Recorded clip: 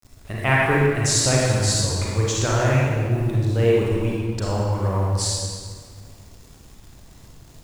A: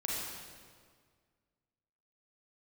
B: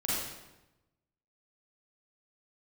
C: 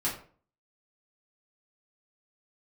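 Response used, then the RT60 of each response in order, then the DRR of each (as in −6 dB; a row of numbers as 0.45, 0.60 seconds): A; 1.8, 1.0, 0.45 seconds; −4.5, −8.0, −8.0 decibels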